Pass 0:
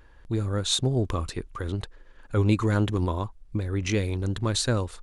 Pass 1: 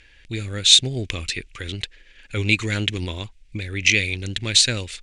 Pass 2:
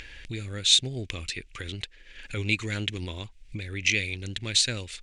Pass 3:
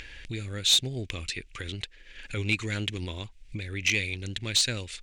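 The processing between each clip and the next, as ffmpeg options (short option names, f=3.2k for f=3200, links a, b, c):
-af "lowpass=f=8.8k:w=0.5412,lowpass=f=8.8k:w=1.3066,highshelf=f=1.6k:t=q:w=3:g=13,volume=-2dB"
-af "acompressor=mode=upward:threshold=-24dB:ratio=2.5,volume=-7dB"
-af "asoftclip=type=tanh:threshold=-13dB"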